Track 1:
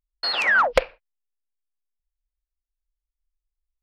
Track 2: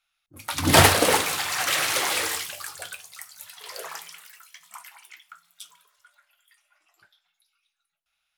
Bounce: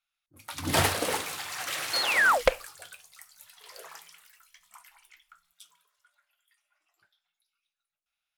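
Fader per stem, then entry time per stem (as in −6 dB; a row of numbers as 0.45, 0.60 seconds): −3.5, −9.5 decibels; 1.70, 0.00 seconds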